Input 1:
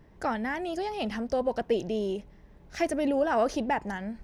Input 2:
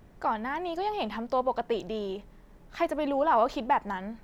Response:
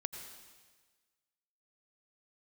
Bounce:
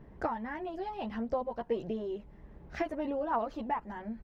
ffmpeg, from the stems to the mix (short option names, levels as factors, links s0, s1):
-filter_complex "[0:a]equalizer=f=10000:w=0.48:g=-13.5,volume=1.33[s0];[1:a]aphaser=in_gain=1:out_gain=1:delay=1.2:decay=0.53:speed=1.5:type=triangular,adelay=13,volume=0.282,asplit=2[s1][s2];[s2]apad=whole_len=186651[s3];[s0][s3]sidechaincompress=threshold=0.00398:ratio=8:attack=24:release=368[s4];[s4][s1]amix=inputs=2:normalize=0,highshelf=f=3000:g=-9"